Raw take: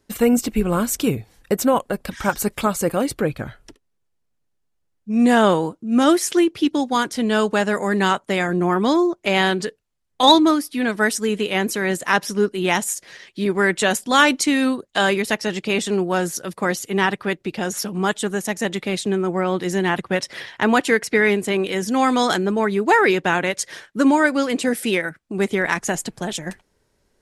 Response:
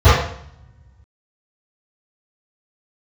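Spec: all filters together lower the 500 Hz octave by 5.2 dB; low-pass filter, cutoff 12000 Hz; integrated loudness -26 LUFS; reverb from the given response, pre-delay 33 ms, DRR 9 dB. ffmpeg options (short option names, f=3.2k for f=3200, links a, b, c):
-filter_complex "[0:a]lowpass=12k,equalizer=f=500:t=o:g=-7,asplit=2[a][b];[1:a]atrim=start_sample=2205,adelay=33[c];[b][c]afir=irnorm=-1:irlink=0,volume=-38dB[d];[a][d]amix=inputs=2:normalize=0,volume=-4.5dB"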